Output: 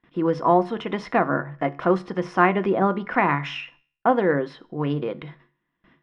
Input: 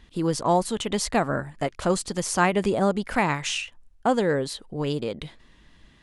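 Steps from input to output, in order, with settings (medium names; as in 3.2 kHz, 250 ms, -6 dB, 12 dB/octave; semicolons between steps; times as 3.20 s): gate with hold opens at -42 dBFS; low-pass 2.2 kHz 12 dB/octave; feedback comb 71 Hz, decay 0.48 s, harmonics all, mix 40%; reverberation RT60 0.15 s, pre-delay 3 ms, DRR 9.5 dB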